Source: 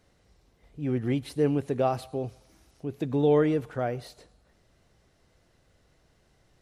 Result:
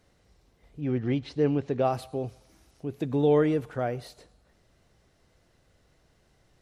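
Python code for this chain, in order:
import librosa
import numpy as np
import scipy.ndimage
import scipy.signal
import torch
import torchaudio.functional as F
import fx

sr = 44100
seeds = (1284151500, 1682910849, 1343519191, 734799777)

y = fx.lowpass(x, sr, hz=5800.0, slope=24, at=(0.8, 1.83), fade=0.02)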